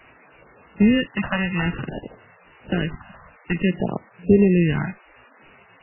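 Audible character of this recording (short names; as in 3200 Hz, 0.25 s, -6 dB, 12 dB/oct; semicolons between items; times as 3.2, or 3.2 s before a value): aliases and images of a low sample rate 2300 Hz, jitter 0%; phasing stages 2, 0.54 Hz, lowest notch 360–2000 Hz; a quantiser's noise floor 8-bit, dither triangular; MP3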